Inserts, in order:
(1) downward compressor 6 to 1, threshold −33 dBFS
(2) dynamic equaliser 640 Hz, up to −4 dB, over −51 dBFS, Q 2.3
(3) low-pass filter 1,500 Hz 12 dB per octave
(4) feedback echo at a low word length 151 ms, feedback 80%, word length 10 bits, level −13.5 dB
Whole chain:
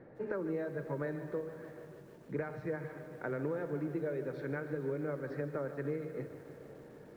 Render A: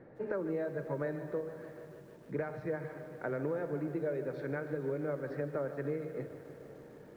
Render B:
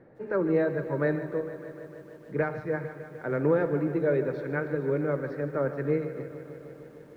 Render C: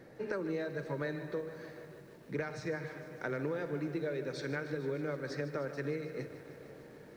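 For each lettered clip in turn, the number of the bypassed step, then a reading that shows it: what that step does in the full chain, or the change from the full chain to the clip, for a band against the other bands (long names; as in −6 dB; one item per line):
2, change in integrated loudness +1.0 LU
1, change in momentary loudness spread +3 LU
3, 2 kHz band +4.0 dB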